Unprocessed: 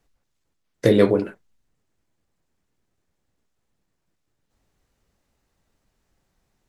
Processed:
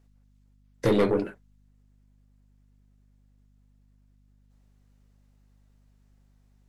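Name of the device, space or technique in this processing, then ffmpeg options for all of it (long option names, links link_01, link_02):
valve amplifier with mains hum: -af "aeval=exprs='(tanh(5.01*val(0)+0.3)-tanh(0.3))/5.01':channel_layout=same,aeval=exprs='val(0)+0.00126*(sin(2*PI*50*n/s)+sin(2*PI*2*50*n/s)/2+sin(2*PI*3*50*n/s)/3+sin(2*PI*4*50*n/s)/4+sin(2*PI*5*50*n/s)/5)':channel_layout=same,volume=-2dB"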